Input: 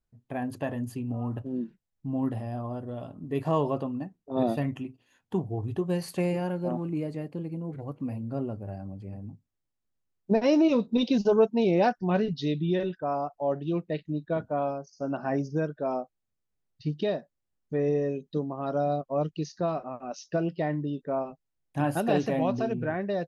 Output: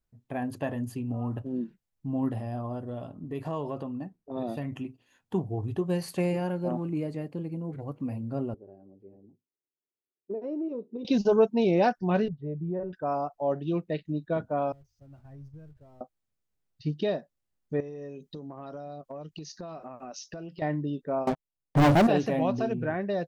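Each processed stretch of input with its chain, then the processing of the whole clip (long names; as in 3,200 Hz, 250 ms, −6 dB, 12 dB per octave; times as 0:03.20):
0:02.98–0:04.72: downward compressor 2 to 1, threshold −33 dBFS + one half of a high-frequency compander decoder only
0:08.54–0:11.05: resonant band-pass 390 Hz, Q 4.1 + downward compressor 2.5 to 1, threshold −31 dBFS
0:12.28–0:12.93: low-pass filter 1,100 Hz 24 dB per octave + parametric band 270 Hz −12 dB 1 octave
0:14.72–0:16.01: converter with a step at zero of −38 dBFS + noise gate −37 dBFS, range −6 dB + drawn EQ curve 110 Hz 0 dB, 190 Hz −25 dB, 770 Hz −30 dB
0:17.80–0:20.62: high-shelf EQ 3,300 Hz +6 dB + downward compressor 12 to 1, threshold −36 dBFS
0:21.27–0:22.07: Savitzky-Golay smoothing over 65 samples + leveller curve on the samples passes 5
whole clip: no processing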